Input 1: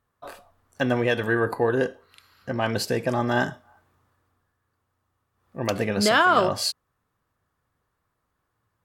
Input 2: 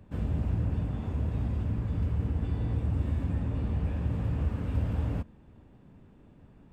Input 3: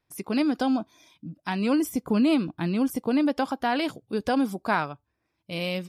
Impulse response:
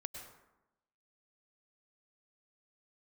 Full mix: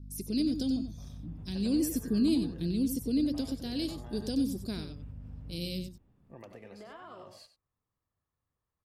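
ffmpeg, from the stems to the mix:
-filter_complex "[0:a]equalizer=f=1.5k:t=o:w=0.27:g=-8,acrossover=split=270|2300[a][b][c];[a]acompressor=threshold=-39dB:ratio=4[d];[b]acompressor=threshold=-23dB:ratio=4[e];[c]acompressor=threshold=-43dB:ratio=4[f];[d][e][f]amix=inputs=3:normalize=0,adelay=750,volume=-14.5dB,asplit=2[g][h];[h]volume=-14.5dB[i];[1:a]adelay=350,volume=-14.5dB[j];[2:a]aeval=exprs='val(0)+0.0112*(sin(2*PI*50*n/s)+sin(2*PI*2*50*n/s)/2+sin(2*PI*3*50*n/s)/3+sin(2*PI*4*50*n/s)/4+sin(2*PI*5*50*n/s)/5)':c=same,firequalizer=gain_entry='entry(360,0);entry(850,-28);entry(4100,5)':delay=0.05:min_phase=1,volume=-5dB,asplit=2[k][l];[l]volume=-9dB[m];[g][j]amix=inputs=2:normalize=0,lowshelf=f=160:g=6.5,acompressor=threshold=-46dB:ratio=6,volume=0dB[n];[i][m]amix=inputs=2:normalize=0,aecho=0:1:93:1[o];[k][n][o]amix=inputs=3:normalize=0"

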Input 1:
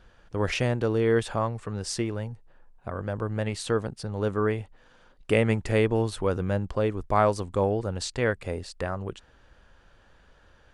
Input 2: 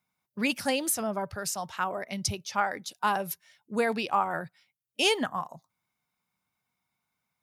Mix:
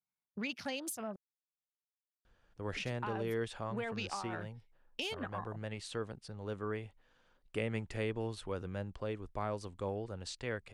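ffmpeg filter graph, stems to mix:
-filter_complex "[0:a]adelay=2250,volume=-13.5dB[a];[1:a]afwtdn=0.00891,acompressor=threshold=-39dB:ratio=3,volume=-1.5dB,asplit=3[b][c][d];[b]atrim=end=1.16,asetpts=PTS-STARTPTS,afade=t=out:st=1.156:d=0.004:c=hsin[e];[c]atrim=start=1.16:end=2.76,asetpts=PTS-STARTPTS,volume=0[f];[d]atrim=start=2.76,asetpts=PTS-STARTPTS,afade=t=in:d=0.004:c=hsin[g];[e][f][g]concat=n=3:v=0:a=1[h];[a][h]amix=inputs=2:normalize=0,adynamicequalizer=threshold=0.00126:dfrequency=3100:dqfactor=0.79:tfrequency=3100:tqfactor=0.79:attack=5:release=100:ratio=0.375:range=2.5:mode=boostabove:tftype=bell,acrossover=split=470[i][j];[j]acompressor=threshold=-37dB:ratio=3[k];[i][k]amix=inputs=2:normalize=0"

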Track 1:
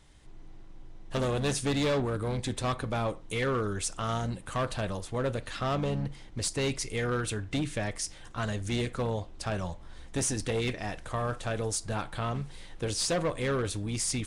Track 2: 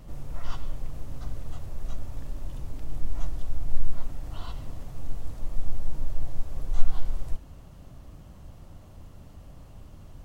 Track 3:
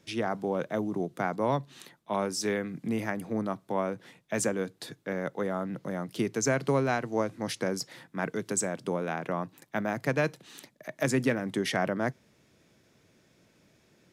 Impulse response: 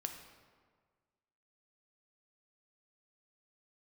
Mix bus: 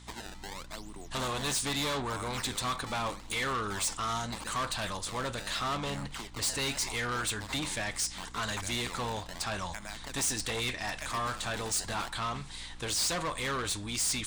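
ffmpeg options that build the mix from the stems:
-filter_complex "[0:a]volume=-3dB[a];[2:a]equalizer=f=2.8k:w=1.6:g=12.5,acompressor=threshold=-29dB:ratio=6,acrusher=samples=23:mix=1:aa=0.000001:lfo=1:lforange=36.8:lforate=0.79,volume=-13dB[b];[a][b]amix=inputs=2:normalize=0,equalizer=f=125:t=o:w=1:g=-5,equalizer=f=500:t=o:w=1:g=-4,equalizer=f=1k:t=o:w=1:g=9,equalizer=f=2k:t=o:w=1:g=5,equalizer=f=4k:t=o:w=1:g=10,equalizer=f=8k:t=o:w=1:g=12,asoftclip=type=tanh:threshold=-27.5dB,aeval=exprs='val(0)+0.00282*(sin(2*PI*60*n/s)+sin(2*PI*2*60*n/s)/2+sin(2*PI*3*60*n/s)/3+sin(2*PI*4*60*n/s)/4+sin(2*PI*5*60*n/s)/5)':c=same"

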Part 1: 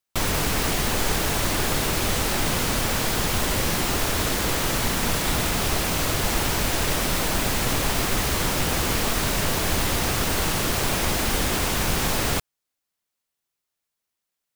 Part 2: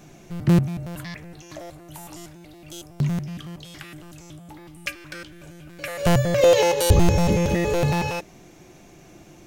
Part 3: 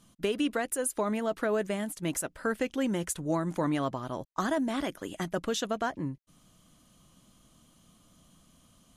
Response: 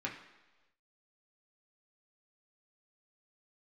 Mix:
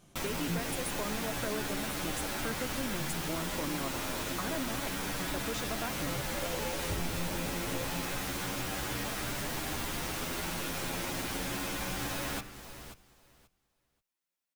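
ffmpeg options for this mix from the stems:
-filter_complex "[0:a]asplit=2[a][b];[b]adelay=9.4,afreqshift=0.29[c];[a][c]amix=inputs=2:normalize=1,volume=-7dB,asplit=3[d][e][f];[e]volume=-4dB[g];[f]volume=-13.5dB[h];[1:a]flanger=delay=17.5:depth=4:speed=0.26,volume=-12dB[i];[2:a]volume=-3dB[j];[3:a]atrim=start_sample=2205[k];[g][k]afir=irnorm=-1:irlink=0[l];[h]aecho=0:1:533|1066|1599:1|0.16|0.0256[m];[d][i][j][l][m]amix=inputs=5:normalize=0,acompressor=threshold=-42dB:ratio=1.5"

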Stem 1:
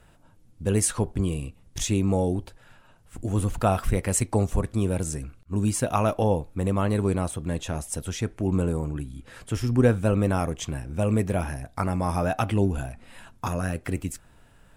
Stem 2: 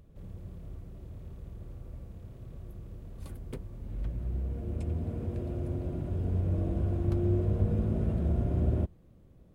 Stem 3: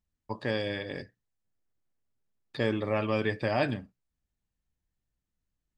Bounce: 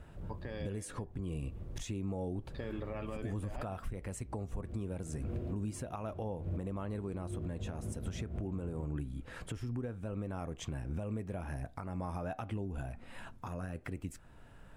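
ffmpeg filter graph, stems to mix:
-filter_complex "[0:a]volume=0.5dB,asplit=2[a][b];[1:a]adynamicequalizer=threshold=0.00178:dfrequency=1500:dqfactor=0.7:tfrequency=1500:tqfactor=0.7:attack=5:release=100:ratio=0.375:range=2.5:mode=boostabove:tftype=highshelf,volume=1dB[c];[2:a]alimiter=limit=-19.5dB:level=0:latency=1,volume=-6dB[d];[b]apad=whole_len=420726[e];[c][e]sidechaincompress=threshold=-37dB:ratio=10:attack=12:release=126[f];[a][d]amix=inputs=2:normalize=0,acompressor=threshold=-29dB:ratio=5,volume=0dB[g];[f][g]amix=inputs=2:normalize=0,highshelf=f=3.3k:g=-9.5,alimiter=level_in=5.5dB:limit=-24dB:level=0:latency=1:release=455,volume=-5.5dB"

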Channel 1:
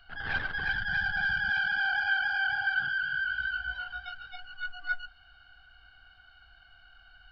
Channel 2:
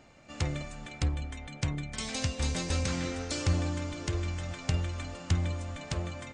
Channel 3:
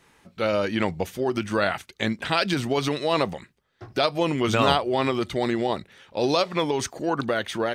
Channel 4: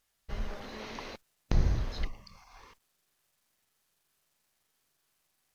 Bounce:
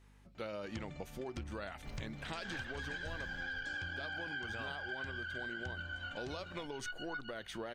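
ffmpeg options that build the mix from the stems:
-filter_complex "[0:a]equalizer=f=3.1k:t=o:w=1.7:g=6.5,adelay=2250,volume=-4dB[a];[1:a]highshelf=f=7.1k:g=-11.5,adelay=350,volume=-7.5dB[b];[2:a]aeval=exprs='val(0)+0.00355*(sin(2*PI*50*n/s)+sin(2*PI*2*50*n/s)/2+sin(2*PI*3*50*n/s)/3+sin(2*PI*4*50*n/s)/4+sin(2*PI*5*50*n/s)/5)':c=same,volume=-12.5dB[c];[3:a]acrusher=bits=8:mode=log:mix=0:aa=0.000001,adelay=1550,volume=-10.5dB[d];[a][b][c][d]amix=inputs=4:normalize=0,acompressor=threshold=-39dB:ratio=10"

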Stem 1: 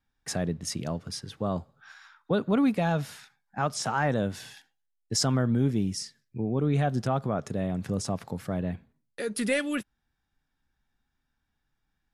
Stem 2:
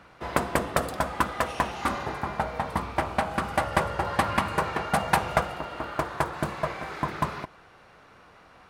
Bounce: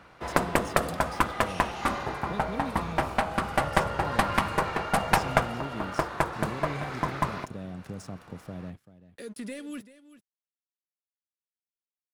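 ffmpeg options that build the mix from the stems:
-filter_complex "[0:a]acrossover=split=440|3400[a][b][c];[a]acompressor=threshold=-31dB:ratio=4[d];[b]acompressor=threshold=-44dB:ratio=4[e];[c]acompressor=threshold=-43dB:ratio=4[f];[d][e][f]amix=inputs=3:normalize=0,aeval=exprs='sgn(val(0))*max(abs(val(0))-0.00316,0)':c=same,volume=-4dB,asplit=2[g][h];[h]volume=-16dB[i];[1:a]aeval=exprs='0.75*(cos(1*acos(clip(val(0)/0.75,-1,1)))-cos(1*PI/2))+0.15*(cos(4*acos(clip(val(0)/0.75,-1,1)))-cos(4*PI/2))':c=same,volume=-0.5dB[j];[i]aecho=0:1:387:1[k];[g][j][k]amix=inputs=3:normalize=0"

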